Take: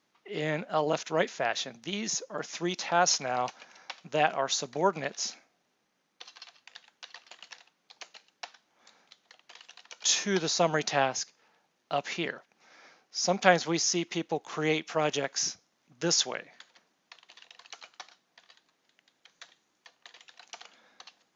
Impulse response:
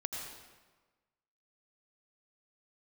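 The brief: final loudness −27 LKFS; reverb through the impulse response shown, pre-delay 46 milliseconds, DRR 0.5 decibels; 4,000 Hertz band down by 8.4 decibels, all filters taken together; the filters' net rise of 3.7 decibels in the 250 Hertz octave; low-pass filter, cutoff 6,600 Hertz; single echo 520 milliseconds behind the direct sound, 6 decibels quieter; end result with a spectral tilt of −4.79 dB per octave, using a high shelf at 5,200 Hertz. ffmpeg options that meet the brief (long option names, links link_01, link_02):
-filter_complex "[0:a]lowpass=6600,equalizer=frequency=250:width_type=o:gain=6,equalizer=frequency=4000:width_type=o:gain=-6.5,highshelf=frequency=5200:gain=-7.5,aecho=1:1:520:0.501,asplit=2[link_01][link_02];[1:a]atrim=start_sample=2205,adelay=46[link_03];[link_02][link_03]afir=irnorm=-1:irlink=0,volume=-2dB[link_04];[link_01][link_04]amix=inputs=2:normalize=0"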